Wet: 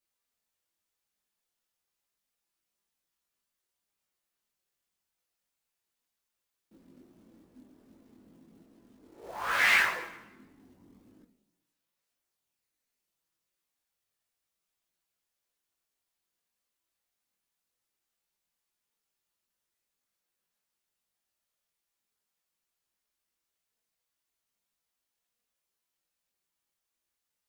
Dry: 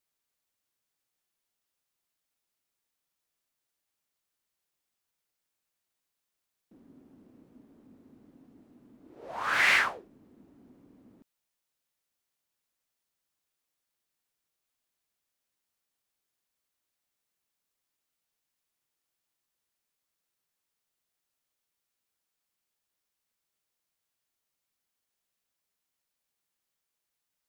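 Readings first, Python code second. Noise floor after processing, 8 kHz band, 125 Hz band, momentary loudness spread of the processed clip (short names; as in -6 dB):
under -85 dBFS, +0.5 dB, n/a, 23 LU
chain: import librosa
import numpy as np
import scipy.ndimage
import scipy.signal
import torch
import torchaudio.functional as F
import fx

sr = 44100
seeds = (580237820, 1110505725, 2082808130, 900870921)

y = fx.rev_plate(x, sr, seeds[0], rt60_s=0.99, hf_ratio=0.9, predelay_ms=0, drr_db=6.5)
y = fx.quant_float(y, sr, bits=2)
y = fx.chorus_voices(y, sr, voices=4, hz=0.31, base_ms=21, depth_ms=3.2, mix_pct=50)
y = F.gain(torch.from_numpy(y), 1.5).numpy()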